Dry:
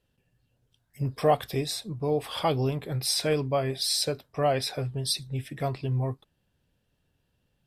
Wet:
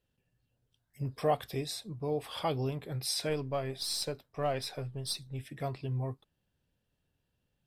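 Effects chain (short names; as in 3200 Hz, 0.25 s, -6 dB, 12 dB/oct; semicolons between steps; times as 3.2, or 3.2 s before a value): 3.29–5.41 half-wave gain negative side -3 dB; gain -6.5 dB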